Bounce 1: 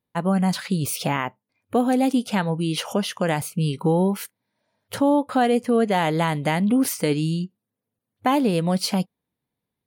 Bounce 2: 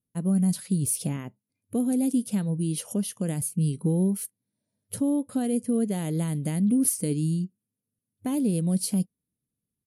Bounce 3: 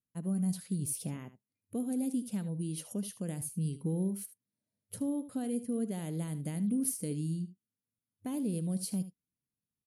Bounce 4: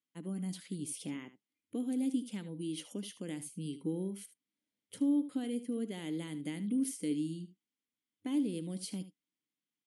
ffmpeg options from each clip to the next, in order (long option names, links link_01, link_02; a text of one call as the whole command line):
ffmpeg -i in.wav -af "firequalizer=gain_entry='entry(200,0);entry(830,-20);entry(11000,9);entry(16000,-25)':delay=0.05:min_phase=1,volume=-1.5dB" out.wav
ffmpeg -i in.wav -af "aecho=1:1:75:0.2,volume=-9dB" out.wav
ffmpeg -i in.wav -af "highpass=240,equalizer=frequency=300:width_type=q:width=4:gain=10,equalizer=frequency=650:width_type=q:width=4:gain=-6,equalizer=frequency=2100:width_type=q:width=4:gain=8,equalizer=frequency=3200:width_type=q:width=4:gain=10,lowpass=frequency=9400:width=0.5412,lowpass=frequency=9400:width=1.3066,volume=-2dB" out.wav